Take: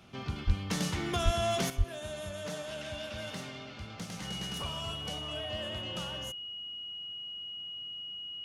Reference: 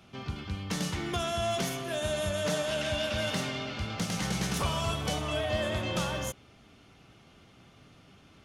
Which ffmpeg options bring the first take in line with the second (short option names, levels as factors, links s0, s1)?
-filter_complex "[0:a]bandreject=f=2900:w=30,asplit=3[s0][s1][s2];[s0]afade=t=out:st=0.46:d=0.02[s3];[s1]highpass=f=140:w=0.5412,highpass=f=140:w=1.3066,afade=t=in:st=0.46:d=0.02,afade=t=out:st=0.58:d=0.02[s4];[s2]afade=t=in:st=0.58:d=0.02[s5];[s3][s4][s5]amix=inputs=3:normalize=0,asplit=3[s6][s7][s8];[s6]afade=t=out:st=1.24:d=0.02[s9];[s7]highpass=f=140:w=0.5412,highpass=f=140:w=1.3066,afade=t=in:st=1.24:d=0.02,afade=t=out:st=1.36:d=0.02[s10];[s8]afade=t=in:st=1.36:d=0.02[s11];[s9][s10][s11]amix=inputs=3:normalize=0,asplit=3[s12][s13][s14];[s12]afade=t=out:st=1.77:d=0.02[s15];[s13]highpass=f=140:w=0.5412,highpass=f=140:w=1.3066,afade=t=in:st=1.77:d=0.02,afade=t=out:st=1.89:d=0.02[s16];[s14]afade=t=in:st=1.89:d=0.02[s17];[s15][s16][s17]amix=inputs=3:normalize=0,asetnsamples=n=441:p=0,asendcmd='1.7 volume volume 9dB',volume=1"